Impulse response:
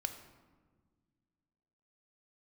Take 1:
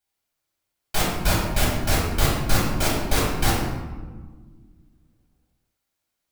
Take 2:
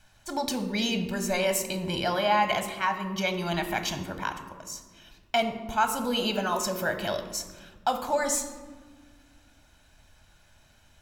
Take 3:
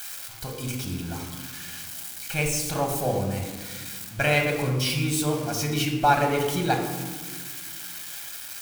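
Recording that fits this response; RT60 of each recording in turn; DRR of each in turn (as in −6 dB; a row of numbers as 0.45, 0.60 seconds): 2; 1.5, 1.6, 1.5 seconds; −6.0, 6.5, 2.0 decibels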